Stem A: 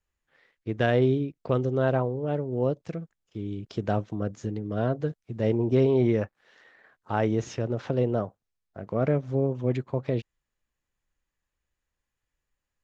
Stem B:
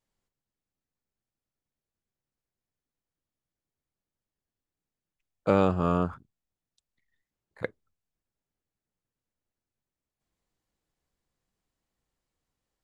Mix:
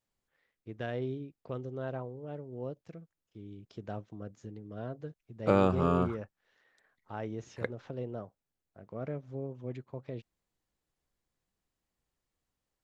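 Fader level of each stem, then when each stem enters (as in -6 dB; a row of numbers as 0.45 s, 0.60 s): -13.5 dB, -2.5 dB; 0.00 s, 0.00 s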